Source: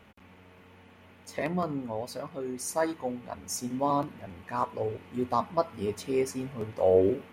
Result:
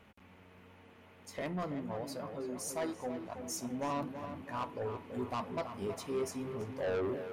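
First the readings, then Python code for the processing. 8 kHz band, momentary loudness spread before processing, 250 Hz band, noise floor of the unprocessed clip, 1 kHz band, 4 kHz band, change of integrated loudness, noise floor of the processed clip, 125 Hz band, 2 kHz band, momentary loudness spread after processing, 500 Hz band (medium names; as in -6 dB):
-5.5 dB, 13 LU, -6.5 dB, -56 dBFS, -9.0 dB, -4.0 dB, -8.0 dB, -59 dBFS, -6.0 dB, -4.5 dB, 20 LU, -9.0 dB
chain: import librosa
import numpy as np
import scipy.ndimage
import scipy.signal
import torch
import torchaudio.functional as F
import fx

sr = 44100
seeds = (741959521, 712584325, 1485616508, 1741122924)

y = 10.0 ** (-26.5 / 20.0) * np.tanh(x / 10.0 ** (-26.5 / 20.0))
y = fx.echo_tape(y, sr, ms=329, feedback_pct=62, wet_db=-4, lp_hz=1500.0, drive_db=31.0, wow_cents=22)
y = F.gain(torch.from_numpy(y), -4.5).numpy()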